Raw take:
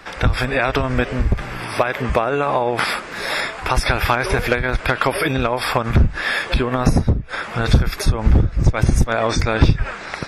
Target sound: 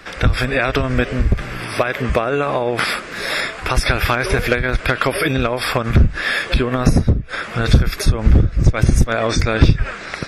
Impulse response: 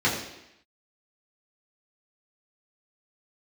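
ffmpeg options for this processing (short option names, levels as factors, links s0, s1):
-af "equalizer=f=880:w=2.5:g=-7.5,volume=1.26"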